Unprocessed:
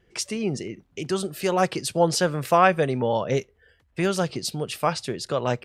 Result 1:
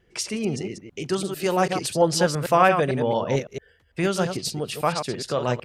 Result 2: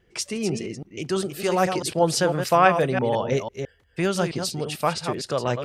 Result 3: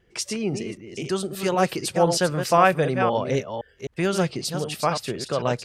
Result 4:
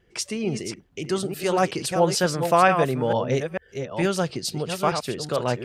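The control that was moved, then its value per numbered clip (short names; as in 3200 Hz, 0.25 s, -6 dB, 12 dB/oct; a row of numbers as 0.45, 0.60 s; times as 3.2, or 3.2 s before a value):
reverse delay, time: 0.112, 0.166, 0.258, 0.447 s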